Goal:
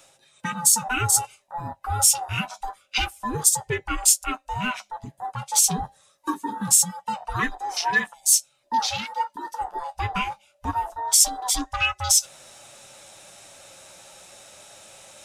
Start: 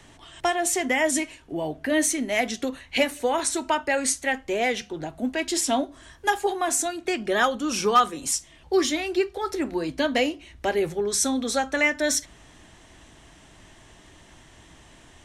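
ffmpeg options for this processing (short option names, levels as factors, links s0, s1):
-filter_complex "[0:a]afftfilt=real='real(if(lt(b,1008),b+24*(1-2*mod(floor(b/24),2)),b),0)':imag='imag(if(lt(b,1008),b+24*(1-2*mod(floor(b/24),2)),b),0)':win_size=2048:overlap=0.75,asplit=2[s0][s1];[s1]alimiter=limit=0.178:level=0:latency=1:release=373,volume=0.891[s2];[s0][s2]amix=inputs=2:normalize=0,crystalizer=i=4:c=0,afwtdn=0.112,flanger=delay=7:depth=4.4:regen=-39:speed=0.25:shape=triangular,areverse,acompressor=mode=upward:threshold=0.0501:ratio=2.5,areverse,volume=0.562"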